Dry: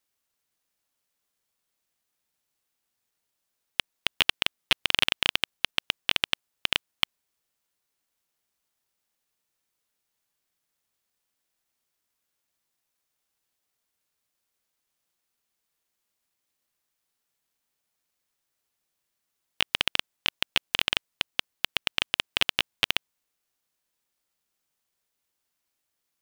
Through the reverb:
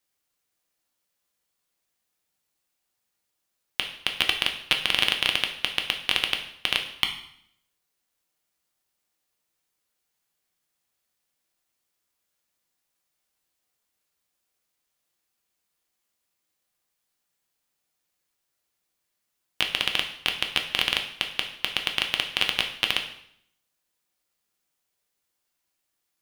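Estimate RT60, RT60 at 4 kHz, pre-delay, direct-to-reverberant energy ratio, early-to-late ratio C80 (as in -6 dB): 0.65 s, 0.65 s, 4 ms, 3.5 dB, 12.0 dB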